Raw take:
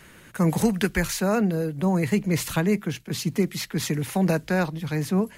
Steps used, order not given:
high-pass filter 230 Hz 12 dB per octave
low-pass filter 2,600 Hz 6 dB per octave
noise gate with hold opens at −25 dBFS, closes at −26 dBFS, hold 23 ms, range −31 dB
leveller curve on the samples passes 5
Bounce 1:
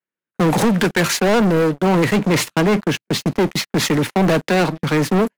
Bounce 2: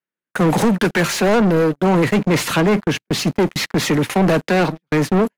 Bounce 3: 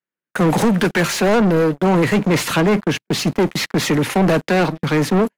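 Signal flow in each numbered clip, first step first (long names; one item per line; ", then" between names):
low-pass filter, then noise gate with hold, then high-pass filter, then leveller curve on the samples
high-pass filter, then noise gate with hold, then leveller curve on the samples, then low-pass filter
noise gate with hold, then high-pass filter, then leveller curve on the samples, then low-pass filter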